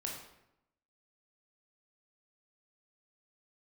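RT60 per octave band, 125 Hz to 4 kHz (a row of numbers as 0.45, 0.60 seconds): 1.0, 0.95, 0.85, 0.80, 0.75, 0.60 seconds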